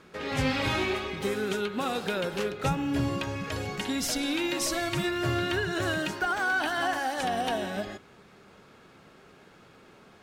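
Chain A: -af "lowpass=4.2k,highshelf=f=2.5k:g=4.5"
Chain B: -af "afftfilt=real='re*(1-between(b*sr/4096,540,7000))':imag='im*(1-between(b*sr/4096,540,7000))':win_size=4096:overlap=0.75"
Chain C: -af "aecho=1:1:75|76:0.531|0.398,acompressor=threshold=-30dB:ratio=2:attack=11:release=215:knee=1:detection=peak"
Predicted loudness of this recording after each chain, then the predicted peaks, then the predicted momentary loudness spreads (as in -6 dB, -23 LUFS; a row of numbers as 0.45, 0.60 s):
-28.5, -33.0, -31.0 LUFS; -14.5, -17.5, -18.0 dBFS; 6, 9, 3 LU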